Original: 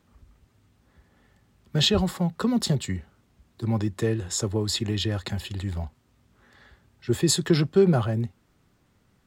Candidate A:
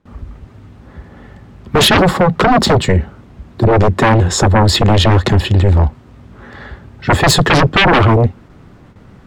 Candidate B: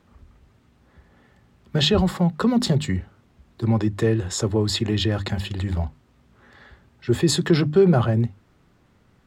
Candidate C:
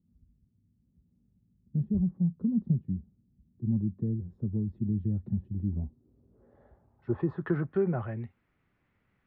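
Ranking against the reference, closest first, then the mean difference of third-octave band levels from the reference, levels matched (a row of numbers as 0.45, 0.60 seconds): B, A, C; 2.5, 7.0, 13.5 decibels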